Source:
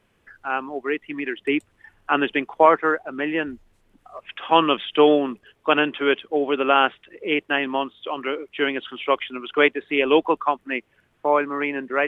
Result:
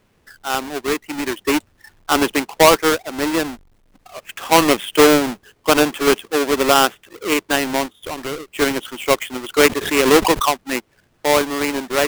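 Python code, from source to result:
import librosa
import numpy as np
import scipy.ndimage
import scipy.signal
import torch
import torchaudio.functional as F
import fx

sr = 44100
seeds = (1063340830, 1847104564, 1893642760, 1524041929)

y = fx.halfwave_hold(x, sr)
y = fx.tube_stage(y, sr, drive_db=19.0, bias=0.6, at=(7.86, 8.48))
y = fx.pre_swell(y, sr, db_per_s=86.0, at=(9.61, 10.57))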